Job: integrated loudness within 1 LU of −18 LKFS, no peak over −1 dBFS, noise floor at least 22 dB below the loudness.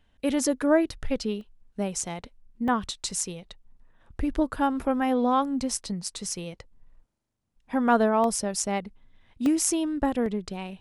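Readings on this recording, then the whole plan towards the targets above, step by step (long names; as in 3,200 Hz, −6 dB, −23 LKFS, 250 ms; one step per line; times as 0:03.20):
number of dropouts 6; longest dropout 1.5 ms; integrated loudness −27.0 LKFS; sample peak −6.0 dBFS; target loudness −18.0 LKFS
→ repair the gap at 0:01.41/0:02.68/0:06.08/0:08.24/0:09.46/0:10.26, 1.5 ms
level +9 dB
brickwall limiter −1 dBFS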